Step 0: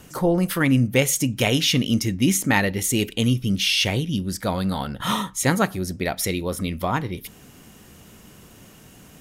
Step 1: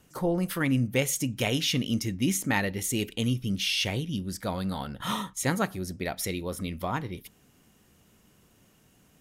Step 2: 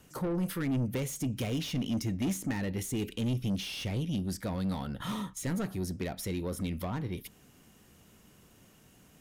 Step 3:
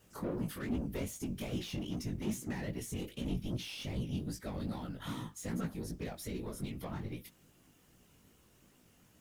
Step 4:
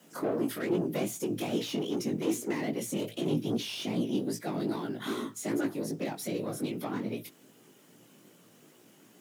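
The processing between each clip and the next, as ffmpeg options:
-af "agate=range=-7dB:threshold=-35dB:ratio=16:detection=peak,volume=-7dB"
-filter_complex "[0:a]asoftclip=type=tanh:threshold=-28dB,acrossover=split=440[a][b];[b]acompressor=threshold=-43dB:ratio=3[c];[a][c]amix=inputs=2:normalize=0,volume=2dB"
-af "acrusher=bits=10:mix=0:aa=0.000001,afftfilt=real='hypot(re,im)*cos(2*PI*random(0))':imag='hypot(re,im)*sin(2*PI*random(1))':win_size=512:overlap=0.75,flanger=delay=16:depth=6.3:speed=2.5,volume=3dB"
-af "afreqshift=110,volume=6.5dB"

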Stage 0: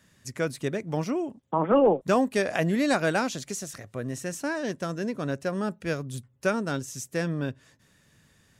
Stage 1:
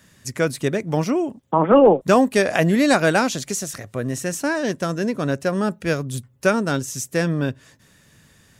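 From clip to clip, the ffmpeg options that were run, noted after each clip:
-af "highshelf=f=10k:g=4,volume=7.5dB"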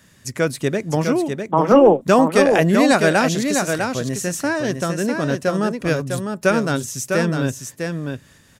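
-af "aecho=1:1:653:0.531,volume=1dB"

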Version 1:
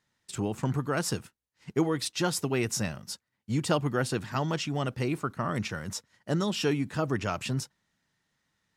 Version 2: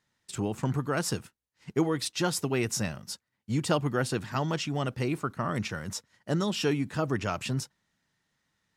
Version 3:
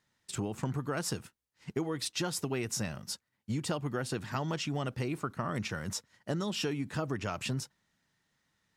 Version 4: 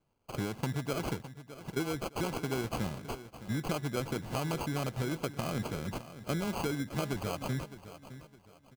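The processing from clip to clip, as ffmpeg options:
-af anull
-af "acompressor=threshold=-30dB:ratio=6"
-af "acrusher=samples=24:mix=1:aa=0.000001,aecho=1:1:612|1224|1836:0.2|0.0658|0.0217"

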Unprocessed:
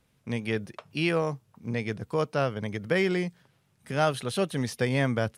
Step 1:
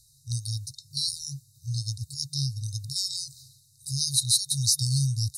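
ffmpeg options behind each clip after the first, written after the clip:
-af "afftfilt=real='re*(1-between(b*sr/4096,140,3700))':imag='im*(1-between(b*sr/4096,140,3700))':win_size=4096:overlap=0.75,equalizer=f=7.9k:w=0.32:g=14,areverse,acompressor=mode=upward:threshold=-47dB:ratio=2.5,areverse,volume=5dB"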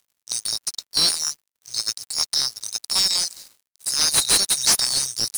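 -filter_complex "[0:a]aderivative,asplit=2[a][b];[b]highpass=f=720:p=1,volume=23dB,asoftclip=type=tanh:threshold=-8dB[c];[a][c]amix=inputs=2:normalize=0,lowpass=f=2.5k:p=1,volume=-6dB,aeval=exprs='sgn(val(0))*max(abs(val(0))-0.00562,0)':c=same,volume=8dB"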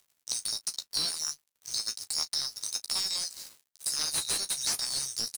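-filter_complex "[0:a]acompressor=threshold=-30dB:ratio=5,asplit=2[a][b];[b]aecho=0:1:13|35:0.447|0.15[c];[a][c]amix=inputs=2:normalize=0"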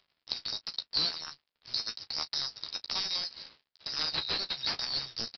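-af "aresample=11025,aresample=44100,volume=2.5dB"

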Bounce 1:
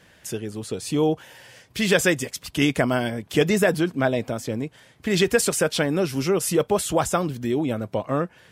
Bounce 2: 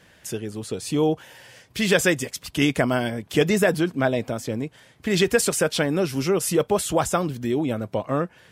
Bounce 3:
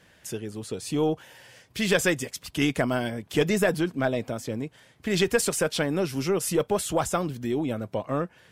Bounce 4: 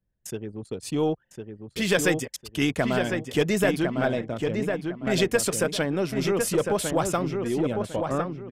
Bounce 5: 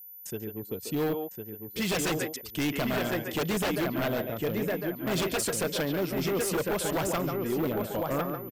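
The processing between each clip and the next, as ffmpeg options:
-af anull
-af "aeval=exprs='0.531*(cos(1*acos(clip(val(0)/0.531,-1,1)))-cos(1*PI/2))+0.0335*(cos(4*acos(clip(val(0)/0.531,-1,1)))-cos(4*PI/2))+0.00944*(cos(6*acos(clip(val(0)/0.531,-1,1)))-cos(6*PI/2))':c=same,volume=-3.5dB"
-filter_complex "[0:a]anlmdn=1.58,asplit=2[a][b];[b]adelay=1054,lowpass=f=2.4k:p=1,volume=-4.5dB,asplit=2[c][d];[d]adelay=1054,lowpass=f=2.4k:p=1,volume=0.28,asplit=2[e][f];[f]adelay=1054,lowpass=f=2.4k:p=1,volume=0.28,asplit=2[g][h];[h]adelay=1054,lowpass=f=2.4k:p=1,volume=0.28[i];[c][e][g][i]amix=inputs=4:normalize=0[j];[a][j]amix=inputs=2:normalize=0"
-filter_complex "[0:a]asplit=2[a][b];[b]adelay=140,highpass=300,lowpass=3.4k,asoftclip=type=hard:threshold=-17.5dB,volume=-6dB[c];[a][c]amix=inputs=2:normalize=0,aeval=exprs='val(0)+0.00891*sin(2*PI*14000*n/s)':c=same,aeval=exprs='0.106*(abs(mod(val(0)/0.106+3,4)-2)-1)':c=same,volume=-3dB"

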